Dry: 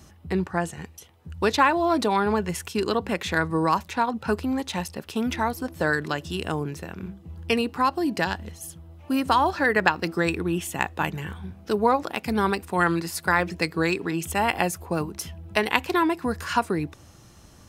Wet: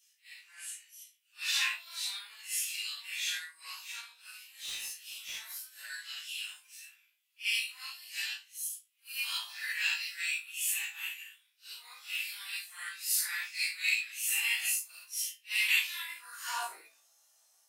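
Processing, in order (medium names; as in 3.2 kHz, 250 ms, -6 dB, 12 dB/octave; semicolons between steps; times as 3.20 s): phase randomisation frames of 200 ms; high-pass sweep 2.5 kHz -> 640 Hz, 15.99–16.75 s; in parallel at -3.5 dB: saturation -17.5 dBFS, distortion -16 dB; on the sum: differentiator; 4.48–5.41 s: hard clipper -31 dBFS, distortion -27 dB; on a send: flutter echo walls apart 3.1 m, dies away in 0.25 s; on the sum: upward expansion 1.5:1, over -49 dBFS; trim -1.5 dB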